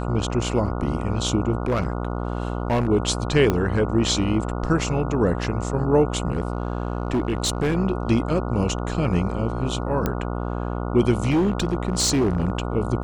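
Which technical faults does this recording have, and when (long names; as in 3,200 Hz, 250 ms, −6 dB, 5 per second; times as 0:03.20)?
mains buzz 60 Hz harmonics 24 −27 dBFS
0:01.62–0:02.89: clipping −17 dBFS
0:03.50: click −8 dBFS
0:06.32–0:07.76: clipping −17.5 dBFS
0:10.06: click −9 dBFS
0:11.30–0:12.60: clipping −16 dBFS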